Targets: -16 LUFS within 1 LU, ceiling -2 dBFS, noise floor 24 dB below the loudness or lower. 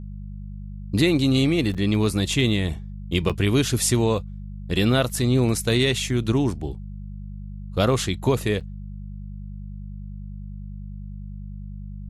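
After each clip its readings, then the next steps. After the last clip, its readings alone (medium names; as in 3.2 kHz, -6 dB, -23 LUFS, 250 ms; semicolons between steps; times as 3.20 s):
dropouts 3; longest dropout 6.6 ms; hum 50 Hz; highest harmonic 200 Hz; hum level -32 dBFS; loudness -22.0 LUFS; peak level -6.5 dBFS; loudness target -16.0 LUFS
-> interpolate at 1.74/3.29/8.60 s, 6.6 ms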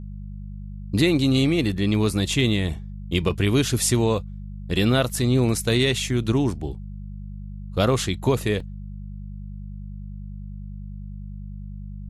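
dropouts 0; hum 50 Hz; highest harmonic 200 Hz; hum level -32 dBFS
-> de-hum 50 Hz, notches 4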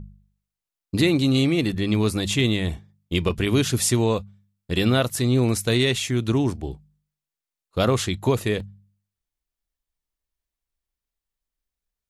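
hum not found; loudness -22.5 LUFS; peak level -6.5 dBFS; loudness target -16.0 LUFS
-> trim +6.5 dB; peak limiter -2 dBFS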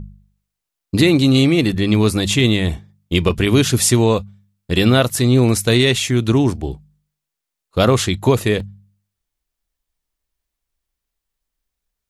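loudness -16.0 LUFS; peak level -2.0 dBFS; noise floor -82 dBFS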